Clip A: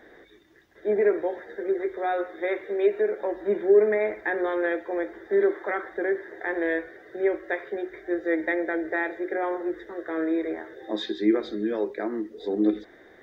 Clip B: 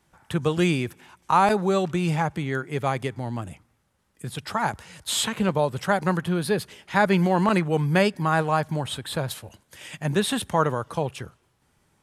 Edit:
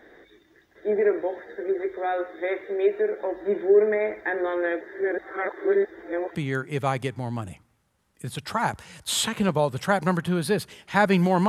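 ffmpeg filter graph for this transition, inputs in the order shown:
-filter_complex "[0:a]apad=whole_dur=11.48,atrim=end=11.48,asplit=2[s0][s1];[s0]atrim=end=4.812[s2];[s1]atrim=start=4.808:end=6.352,asetpts=PTS-STARTPTS,areverse[s3];[1:a]atrim=start=2.348:end=7.48[s4];[s2][s3]acrossfade=d=0.004:c1=hsin:c2=hsin[s5];[s5][s4]acrossfade=d=0.004:c1=hsin:c2=hsin"

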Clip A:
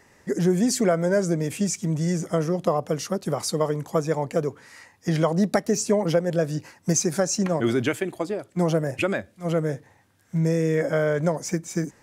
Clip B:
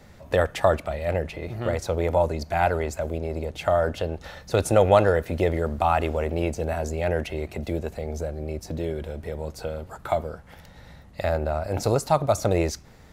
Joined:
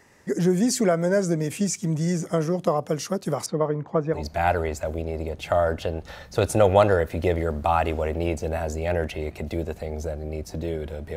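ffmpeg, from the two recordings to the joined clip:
-filter_complex "[0:a]asettb=1/sr,asplit=3[s0][s1][s2];[s0]atrim=end=3.464[s3];[s1]atrim=start=3.46:end=4.24,asetpts=PTS-STARTPTS,afade=t=in:d=0.004:c=qsin,afade=t=out:st=0.776:d=0.004:c=qsin,lowpass=1800[s4];[s2]atrim=start=4.236[s5];[s3][s4]acrossfade=d=0.004:c1=hsin:c2=qsin[s6];[s6][s5]acrossfade=d=0.004:c1=qsin:c2=hsin,apad=whole_dur=11.16,atrim=end=11.16,atrim=end=4.24,asetpts=PTS-STARTPTS[s7];[1:a]atrim=start=2.26:end=9.32,asetpts=PTS-STARTPTS[s8];[s7][s8]acrossfade=d=0.14:c1=tri:c2=tri"

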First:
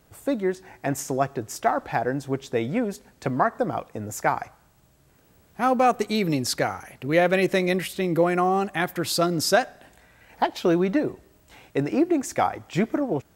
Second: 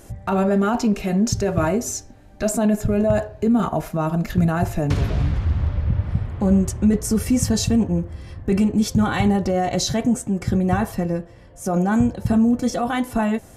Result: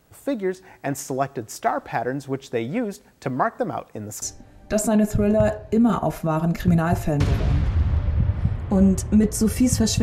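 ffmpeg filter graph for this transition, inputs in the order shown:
-filter_complex "[0:a]apad=whole_dur=10.02,atrim=end=10.02,atrim=end=4.222[s0];[1:a]atrim=start=1.918:end=7.72[s1];[s0][s1]acrossfade=d=0.004:c1=hsin:c2=hsin"

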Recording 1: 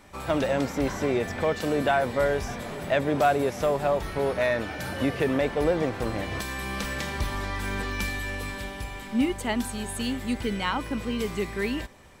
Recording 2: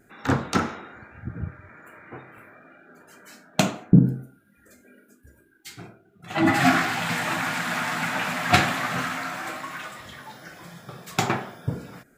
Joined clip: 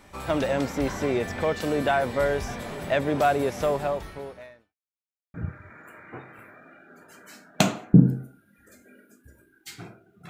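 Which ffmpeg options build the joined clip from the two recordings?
-filter_complex "[0:a]apad=whole_dur=10.29,atrim=end=10.29,asplit=2[s0][s1];[s0]atrim=end=4.76,asetpts=PTS-STARTPTS,afade=t=out:st=3.74:d=1.02:c=qua[s2];[s1]atrim=start=4.76:end=5.34,asetpts=PTS-STARTPTS,volume=0[s3];[1:a]atrim=start=1.33:end=6.28,asetpts=PTS-STARTPTS,afade=t=in:d=0.004:c=hsin[s4];[s2][s3][s4]concat=n=3:v=0:a=1"

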